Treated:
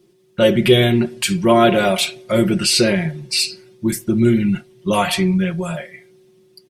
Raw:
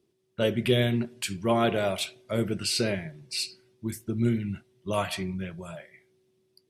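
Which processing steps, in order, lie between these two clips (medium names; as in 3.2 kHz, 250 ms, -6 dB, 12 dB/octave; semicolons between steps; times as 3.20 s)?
comb 5.6 ms, depth 82%; in parallel at 0 dB: peak limiter -24 dBFS, peak gain reduction 14.5 dB; on the sum: trim +6.5 dB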